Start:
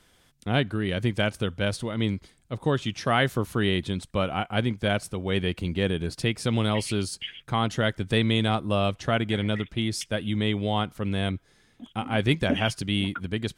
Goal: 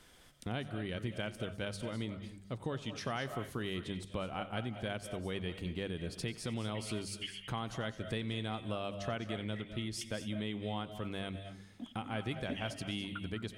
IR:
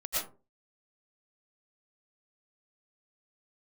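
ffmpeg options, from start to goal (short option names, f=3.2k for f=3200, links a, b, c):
-filter_complex "[0:a]bandreject=f=49.36:t=h:w=4,bandreject=f=98.72:t=h:w=4,bandreject=f=148.08:t=h:w=4,bandreject=f=197.44:t=h:w=4,acompressor=threshold=-40dB:ratio=3,asplit=2[a][b];[1:a]atrim=start_sample=2205,asetrate=43659,aresample=44100,adelay=91[c];[b][c]afir=irnorm=-1:irlink=0,volume=-14.5dB[d];[a][d]amix=inputs=2:normalize=0"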